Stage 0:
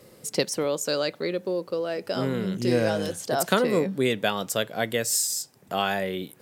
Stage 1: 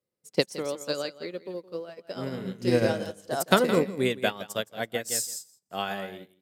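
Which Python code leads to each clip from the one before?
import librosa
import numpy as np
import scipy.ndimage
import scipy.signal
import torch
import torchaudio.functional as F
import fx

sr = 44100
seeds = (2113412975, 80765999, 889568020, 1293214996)

y = fx.echo_feedback(x, sr, ms=167, feedback_pct=17, wet_db=-7.5)
y = fx.upward_expand(y, sr, threshold_db=-45.0, expansion=2.5)
y = y * 10.0 ** (4.0 / 20.0)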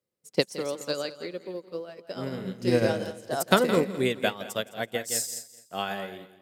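y = fx.echo_feedback(x, sr, ms=210, feedback_pct=33, wet_db=-18)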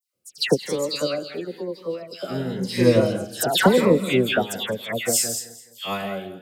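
y = fx.dispersion(x, sr, late='lows', ms=141.0, hz=2000.0)
y = fx.notch_cascade(y, sr, direction='rising', hz=1.0)
y = y * 10.0 ** (7.5 / 20.0)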